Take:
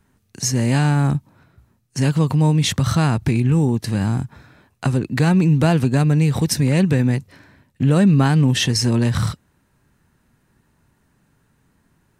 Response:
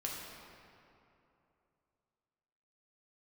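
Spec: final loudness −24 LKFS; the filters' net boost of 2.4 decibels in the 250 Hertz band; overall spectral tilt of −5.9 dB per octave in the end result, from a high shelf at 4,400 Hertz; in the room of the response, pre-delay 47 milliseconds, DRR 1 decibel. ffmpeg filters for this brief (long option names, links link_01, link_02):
-filter_complex "[0:a]equalizer=frequency=250:width_type=o:gain=3.5,highshelf=frequency=4400:gain=5.5,asplit=2[link_01][link_02];[1:a]atrim=start_sample=2205,adelay=47[link_03];[link_02][link_03]afir=irnorm=-1:irlink=0,volume=-2.5dB[link_04];[link_01][link_04]amix=inputs=2:normalize=0,volume=-10.5dB"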